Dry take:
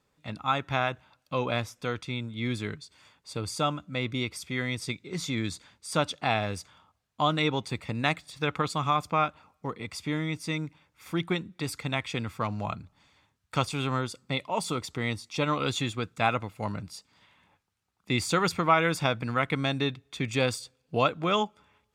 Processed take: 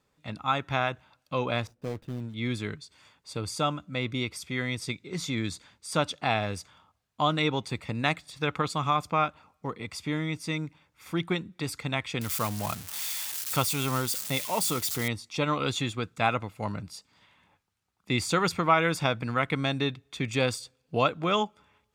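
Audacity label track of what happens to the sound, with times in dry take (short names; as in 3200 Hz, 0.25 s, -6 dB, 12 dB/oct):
1.670000	2.340000	median filter over 41 samples
12.210000	15.080000	switching spikes of -23.5 dBFS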